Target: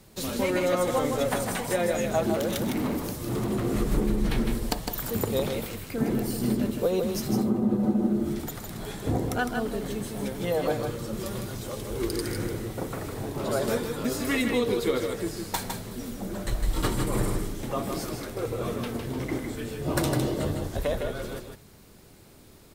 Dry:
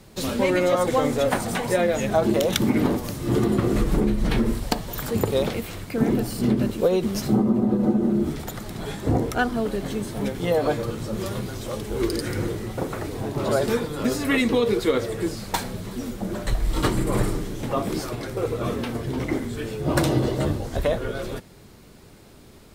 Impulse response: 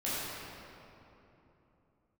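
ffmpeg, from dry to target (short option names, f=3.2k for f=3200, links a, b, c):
-filter_complex "[0:a]highshelf=f=8.1k:g=7.5,asettb=1/sr,asplit=3[a][b][c];[a]atrim=end=2.354[d];[b]atrim=start=2.35:end=3.65,asetpts=PTS-STARTPTS,afade=t=in:d=0.004:c=qsin,afade=t=out:st=1.296:d=0.004:c=qsin,asoftclip=type=hard:threshold=-20dB[e];[c]atrim=start=3.646[f];[d][e]acrossfade=d=0.004:c1=hsin:c2=qsin[g];[g][f]acrossfade=d=0.004:c1=qsin:c2=hsin,aecho=1:1:157:0.531,volume=-5.5dB"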